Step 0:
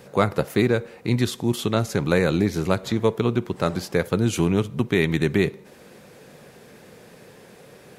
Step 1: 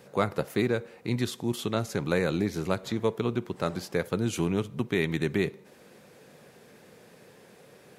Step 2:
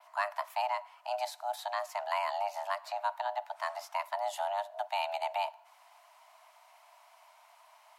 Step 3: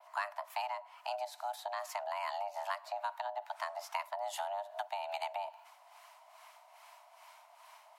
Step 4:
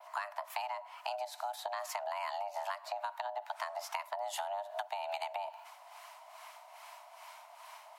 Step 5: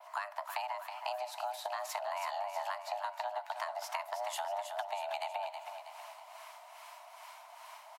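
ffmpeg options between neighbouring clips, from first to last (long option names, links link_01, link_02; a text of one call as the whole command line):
ffmpeg -i in.wav -af "lowshelf=frequency=62:gain=-9.5,volume=-6dB" out.wav
ffmpeg -i in.wav -af "adynamicequalizer=threshold=0.002:dfrequency=7100:dqfactor=0.85:tfrequency=7100:tqfactor=0.85:attack=5:release=100:ratio=0.375:range=2:mode=cutabove:tftype=bell,afreqshift=500,volume=-6.5dB" out.wav
ffmpeg -i in.wav -filter_complex "[0:a]acompressor=threshold=-36dB:ratio=6,acrossover=split=760[link_01][link_02];[link_01]aeval=exprs='val(0)*(1-0.7/2+0.7/2*cos(2*PI*2.4*n/s))':channel_layout=same[link_03];[link_02]aeval=exprs='val(0)*(1-0.7/2-0.7/2*cos(2*PI*2.4*n/s))':channel_layout=same[link_04];[link_03][link_04]amix=inputs=2:normalize=0,volume=5dB" out.wav
ffmpeg -i in.wav -af "acompressor=threshold=-40dB:ratio=6,volume=5.5dB" out.wav
ffmpeg -i in.wav -af "aecho=1:1:321|642|963|1284|1605|1926:0.398|0.199|0.0995|0.0498|0.0249|0.0124" out.wav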